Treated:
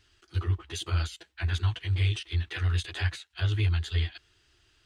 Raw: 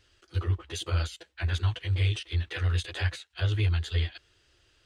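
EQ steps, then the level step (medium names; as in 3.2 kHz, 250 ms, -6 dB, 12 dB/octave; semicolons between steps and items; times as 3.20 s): peaking EQ 530 Hz -13 dB 0.29 oct; 0.0 dB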